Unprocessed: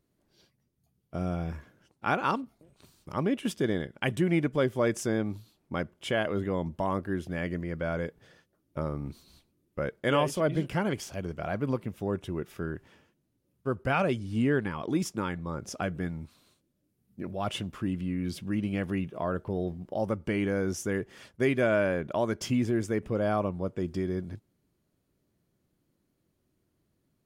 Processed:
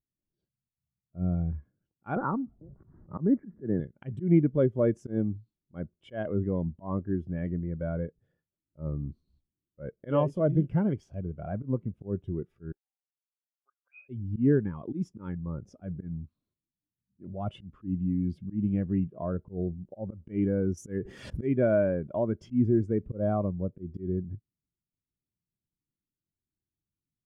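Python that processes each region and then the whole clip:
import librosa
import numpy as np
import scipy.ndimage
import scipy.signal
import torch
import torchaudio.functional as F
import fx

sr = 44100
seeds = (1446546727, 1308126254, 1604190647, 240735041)

y = fx.chain(x, sr, fx.law_mismatch(coded='mu'),
    fx.steep_lowpass(hz=2000.0, slope=72),
    fx.band_squash(depth_pct=70), at=(2.16, 3.8))
y = fx.chain(y, sr, fx.weighting(curve='A'),
    fx.auto_wah(base_hz=710.0, top_hz=2500.0, q=18.0, full_db=-25.5, direction='up'), at=(12.72, 14.09))
y = fx.chain(y, sr, fx.high_shelf(hz=4600.0, db=12.0),
    fx.pre_swell(db_per_s=45.0), at=(20.77, 21.47))
y = fx.tilt_eq(y, sr, slope=-2.0)
y = fx.auto_swell(y, sr, attack_ms=115.0)
y = fx.spectral_expand(y, sr, expansion=1.5)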